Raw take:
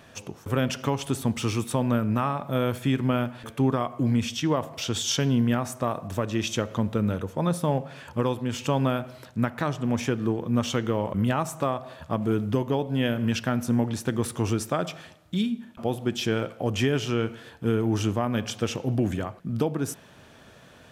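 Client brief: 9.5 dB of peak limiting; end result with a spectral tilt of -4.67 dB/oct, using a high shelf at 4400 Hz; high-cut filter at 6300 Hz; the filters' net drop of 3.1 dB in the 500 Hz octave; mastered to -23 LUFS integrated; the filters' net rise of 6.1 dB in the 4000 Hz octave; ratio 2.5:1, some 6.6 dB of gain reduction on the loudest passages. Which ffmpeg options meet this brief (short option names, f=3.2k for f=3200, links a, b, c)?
-af "lowpass=6.3k,equalizer=f=500:t=o:g=-4,equalizer=f=4k:t=o:g=6,highshelf=f=4.4k:g=5.5,acompressor=threshold=-29dB:ratio=2.5,volume=12.5dB,alimiter=limit=-12dB:level=0:latency=1"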